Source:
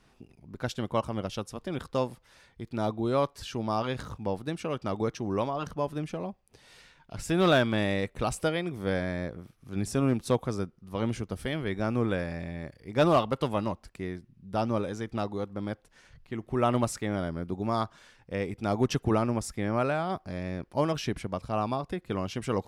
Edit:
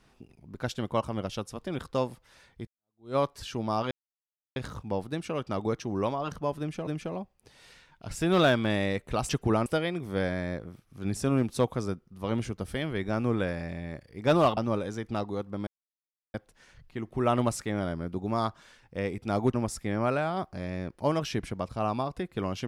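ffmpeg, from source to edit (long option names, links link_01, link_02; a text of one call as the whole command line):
ffmpeg -i in.wav -filter_complex "[0:a]asplit=9[link_01][link_02][link_03][link_04][link_05][link_06][link_07][link_08][link_09];[link_01]atrim=end=2.67,asetpts=PTS-STARTPTS,afade=type=out:start_time=2.666:duration=0.004:curve=hsin[link_10];[link_02]atrim=start=2.67:end=3.91,asetpts=PTS-STARTPTS,afade=type=in:duration=0.49:curve=exp,afade=type=out:start_time=1.236:duration=0.004:curve=hsin,apad=pad_dur=0.65[link_11];[link_03]atrim=start=3.91:end=6.222,asetpts=PTS-STARTPTS,afade=type=in:duration=0.004:curve=hsin[link_12];[link_04]atrim=start=5.948:end=8.372[link_13];[link_05]atrim=start=18.898:end=19.272[link_14];[link_06]atrim=start=8.368:end=13.282[link_15];[link_07]atrim=start=14.598:end=15.7,asetpts=PTS-STARTPTS,afade=type=out:start_time=1.098:duration=0.004:curve=hsin,apad=pad_dur=0.67[link_16];[link_08]atrim=start=15.7:end=18.902,asetpts=PTS-STARTPTS,afade=type=in:duration=0.004:curve=hsin[link_17];[link_09]atrim=start=19.268[link_18];[link_10][link_11][link_12]concat=n=3:v=0:a=1[link_19];[link_19][link_13]acrossfade=duration=0.004:curve1=hsin:curve2=hsin[link_20];[link_20][link_14]acrossfade=duration=0.004:curve1=hsin:curve2=hsin[link_21];[link_21][link_15]acrossfade=duration=0.004:curve1=hsin:curve2=hsin[link_22];[link_16][link_17]concat=n=2:v=0:a=1[link_23];[link_22][link_23]acrossfade=duration=0.004:curve1=hsin:curve2=hsin[link_24];[link_24][link_18]acrossfade=duration=0.004:curve1=hsin:curve2=hsin" out.wav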